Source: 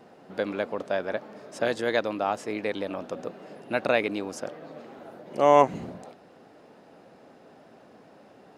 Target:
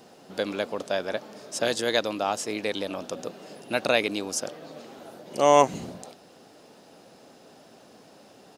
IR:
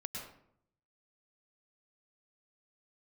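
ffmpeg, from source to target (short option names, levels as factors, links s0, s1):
-af "firequalizer=gain_entry='entry(2000,0);entry(3000,7);entry(5700,13)':delay=0.05:min_phase=1"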